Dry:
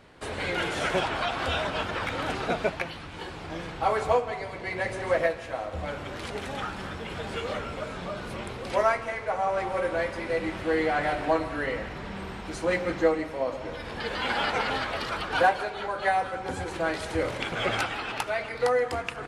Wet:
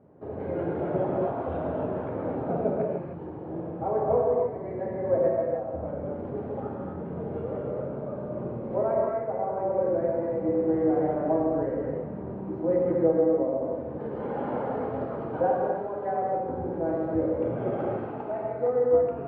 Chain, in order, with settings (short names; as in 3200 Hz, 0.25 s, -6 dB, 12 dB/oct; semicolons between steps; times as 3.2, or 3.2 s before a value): Butterworth band-pass 310 Hz, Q 0.54; tilt -2 dB/oct; non-linear reverb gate 0.33 s flat, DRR -3 dB; gain -3 dB